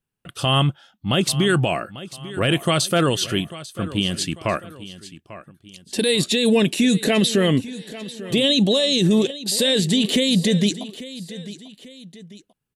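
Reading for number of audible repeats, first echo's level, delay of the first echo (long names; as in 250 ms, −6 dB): 2, −16.0 dB, 844 ms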